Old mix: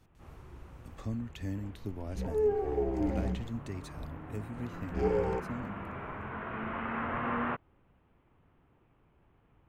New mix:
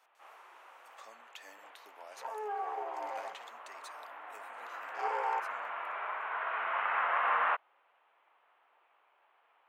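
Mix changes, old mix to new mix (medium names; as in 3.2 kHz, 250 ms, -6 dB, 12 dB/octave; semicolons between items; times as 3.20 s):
first sound +6.0 dB; second sound: add peaking EQ 1.1 kHz +14 dB 0.88 oct; master: add high-pass 680 Hz 24 dB/octave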